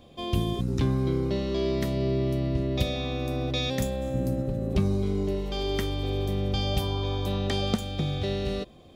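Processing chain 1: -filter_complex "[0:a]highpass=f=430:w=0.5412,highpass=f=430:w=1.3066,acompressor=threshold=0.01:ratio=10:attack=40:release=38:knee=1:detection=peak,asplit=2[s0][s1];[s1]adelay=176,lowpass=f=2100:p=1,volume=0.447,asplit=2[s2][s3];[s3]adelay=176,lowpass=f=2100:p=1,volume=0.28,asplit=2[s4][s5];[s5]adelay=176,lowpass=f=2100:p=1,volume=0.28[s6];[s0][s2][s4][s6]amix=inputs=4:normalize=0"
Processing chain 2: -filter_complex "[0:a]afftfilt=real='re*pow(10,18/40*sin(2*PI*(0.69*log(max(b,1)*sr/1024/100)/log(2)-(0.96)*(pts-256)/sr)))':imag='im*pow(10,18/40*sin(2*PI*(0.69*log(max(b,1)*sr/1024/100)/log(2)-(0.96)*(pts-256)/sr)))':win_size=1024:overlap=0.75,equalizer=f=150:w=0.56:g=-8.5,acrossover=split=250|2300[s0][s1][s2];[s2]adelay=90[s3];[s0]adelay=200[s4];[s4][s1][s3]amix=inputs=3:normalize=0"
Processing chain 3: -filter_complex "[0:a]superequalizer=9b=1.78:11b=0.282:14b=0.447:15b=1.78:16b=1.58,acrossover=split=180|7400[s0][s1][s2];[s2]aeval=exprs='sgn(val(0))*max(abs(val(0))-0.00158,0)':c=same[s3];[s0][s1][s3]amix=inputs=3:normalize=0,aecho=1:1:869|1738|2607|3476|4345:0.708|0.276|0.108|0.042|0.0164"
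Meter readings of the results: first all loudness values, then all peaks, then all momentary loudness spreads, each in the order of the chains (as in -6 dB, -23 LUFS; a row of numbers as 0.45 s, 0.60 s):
-36.5 LUFS, -29.5 LUFS, -26.0 LUFS; -19.5 dBFS, -13.0 dBFS, -8.0 dBFS; 2 LU, 5 LU, 4 LU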